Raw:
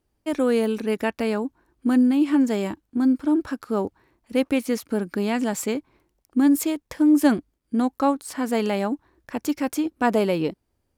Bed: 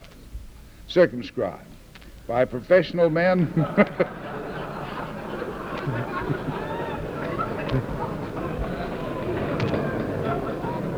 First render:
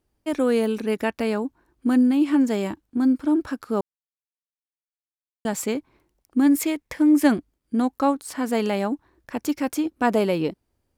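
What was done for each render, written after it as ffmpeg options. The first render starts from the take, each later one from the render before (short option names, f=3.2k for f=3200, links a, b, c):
-filter_complex "[0:a]asettb=1/sr,asplit=3[a][b][c];[a]atrim=end=6.464[d];[b]atrim=start=6.46:end=7.28,asetpts=PTS-STARTPTS,afade=t=in:d=0.004:c=qsin,afade=t=out:st=0.816:d=0.004:c=qsin,equalizer=f=2.1k:w=3:g=7.5[e];[c]atrim=start=7.276[f];[d][e]acrossfade=d=0.004:c1=hsin:c2=qsin[g];[g][f]acrossfade=d=0.004:c1=qsin:c2=hsin,asplit=3[h][i][j];[h]atrim=end=3.81,asetpts=PTS-STARTPTS,afade=t=out:st=3.806:d=0.004:c=hsin[k];[i]atrim=start=3.81:end=5.45,asetpts=PTS-STARTPTS,volume=0[l];[j]atrim=start=5.45,asetpts=PTS-STARTPTS,afade=t=in:d=0.004:c=hsin[m];[k][l][m]concat=n=3:v=0:a=1"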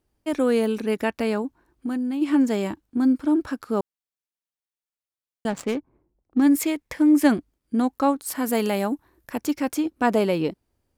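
-filter_complex "[0:a]asplit=3[a][b][c];[a]afade=t=out:st=1.41:d=0.02[d];[b]acompressor=threshold=-24dB:ratio=6:attack=3.2:release=140:knee=1:detection=peak,afade=t=in:st=1.41:d=0.02,afade=t=out:st=2.21:d=0.02[e];[c]afade=t=in:st=2.21:d=0.02[f];[d][e][f]amix=inputs=3:normalize=0,asettb=1/sr,asplit=3[g][h][i];[g]atrim=end=5.504[j];[h]atrim=start=5.5:end=6.42,asetpts=PTS-STARTPTS,afade=t=in:d=0.004:c=qsin,afade=t=out:st=0.916:d=0.004:c=qsin,adynamicsmooth=sensitivity=6.5:basefreq=750[k];[i]atrim=start=6.416[l];[j][k]acrossfade=d=0.004:c1=hsin:c2=qsin[m];[m][l]acrossfade=d=0.004:c1=qsin:c2=hsin,asettb=1/sr,asplit=3[n][o][p];[n]atrim=end=8.264[q];[o]atrim=start=8.26:end=9.38,asetpts=PTS-STARTPTS,afade=t=in:d=0.004:c=qsin,afade=t=out:st=1.116:d=0.004:c=qsin,equalizer=f=13k:w=1:g=14.5[r];[p]atrim=start=9.376[s];[q][r]acrossfade=d=0.004:c1=hsin:c2=qsin[t];[t][s]acrossfade=d=0.004:c1=qsin:c2=hsin"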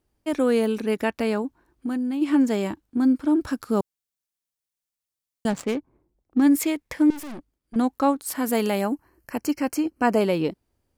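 -filter_complex "[0:a]asettb=1/sr,asplit=3[a][b][c];[a]atrim=end=3.414[d];[b]atrim=start=3.41:end=5.57,asetpts=PTS-STARTPTS,afade=t=in:d=0.004:c=qsin,afade=t=out:st=2.156:d=0.004:c=qsin,bass=f=250:g=5,treble=f=4k:g=6[e];[c]atrim=start=5.566[f];[d][e]acrossfade=d=0.004:c1=hsin:c2=qsin[g];[g][f]acrossfade=d=0.004:c1=qsin:c2=hsin,asettb=1/sr,asplit=3[h][i][j];[h]atrim=end=7.104[k];[i]atrim=start=7.1:end=7.76,asetpts=PTS-STARTPTS,afade=t=in:d=0.004:c=qsin,afade=t=out:st=0.656:d=0.004:c=qsin,aeval=exprs='(tanh(56.2*val(0)+0.7)-tanh(0.7))/56.2':c=same[l];[j]atrim=start=7.756[m];[k][l]acrossfade=d=0.004:c1=hsin:c2=qsin[n];[n][m]acrossfade=d=0.004:c1=qsin:c2=hsin,asettb=1/sr,asplit=3[o][p][q];[o]atrim=end=8.814[r];[p]atrim=start=8.81:end=10.21,asetpts=PTS-STARTPTS,afade=t=in:d=0.004:c=qsin,afade=t=out:st=1.396:d=0.004:c=qsin,asuperstop=centerf=3600:order=12:qfactor=4.1[s];[q]atrim=start=10.206[t];[r][s]acrossfade=d=0.004:c1=hsin:c2=qsin[u];[u][t]acrossfade=d=0.004:c1=qsin:c2=hsin"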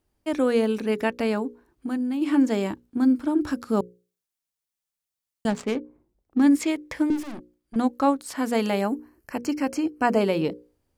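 -filter_complex "[0:a]bandreject=f=60:t=h:w=6,bandreject=f=120:t=h:w=6,bandreject=f=180:t=h:w=6,bandreject=f=240:t=h:w=6,bandreject=f=300:t=h:w=6,bandreject=f=360:t=h:w=6,bandreject=f=420:t=h:w=6,bandreject=f=480:t=h:w=6,bandreject=f=540:t=h:w=6,acrossover=split=7900[a][b];[b]acompressor=threshold=-51dB:ratio=4:attack=1:release=60[c];[a][c]amix=inputs=2:normalize=0"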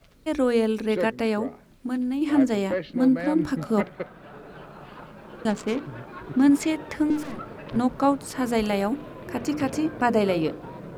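-filter_complex "[1:a]volume=-11dB[a];[0:a][a]amix=inputs=2:normalize=0"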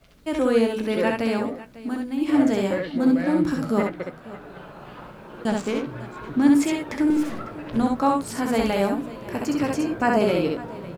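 -filter_complex "[0:a]asplit=2[a][b];[b]adelay=17,volume=-10.5dB[c];[a][c]amix=inputs=2:normalize=0,aecho=1:1:66|550:0.708|0.133"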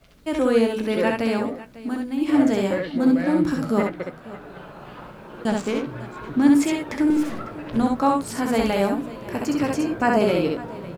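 -af "volume=1dB"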